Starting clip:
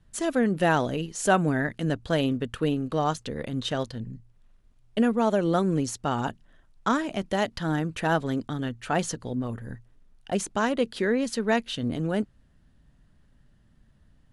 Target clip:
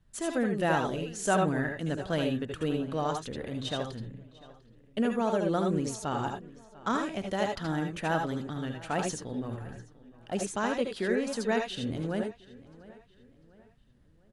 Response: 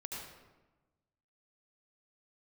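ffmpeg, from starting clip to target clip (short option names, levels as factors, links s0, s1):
-filter_complex "[0:a]asplit=2[s0][s1];[s1]adelay=697,lowpass=f=4600:p=1,volume=0.1,asplit=2[s2][s3];[s3]adelay=697,lowpass=f=4600:p=1,volume=0.42,asplit=2[s4][s5];[s5]adelay=697,lowpass=f=4600:p=1,volume=0.42[s6];[s0][s2][s4][s6]amix=inputs=4:normalize=0[s7];[1:a]atrim=start_sample=2205,atrim=end_sample=3969,asetrate=43659,aresample=44100[s8];[s7][s8]afir=irnorm=-1:irlink=0"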